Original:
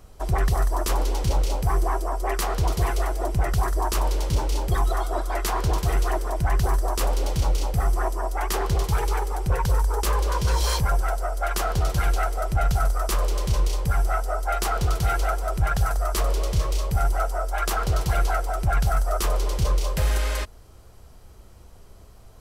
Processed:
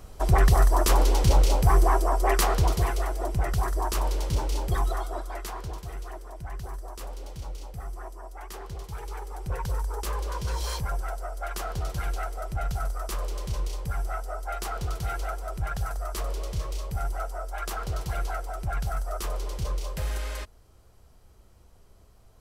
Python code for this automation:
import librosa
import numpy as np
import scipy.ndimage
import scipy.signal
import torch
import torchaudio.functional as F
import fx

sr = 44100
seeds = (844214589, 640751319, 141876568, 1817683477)

y = fx.gain(x, sr, db=fx.line((2.41, 3.0), (2.97, -3.5), (4.82, -3.5), (5.88, -15.0), (8.89, -15.0), (9.56, -8.0)))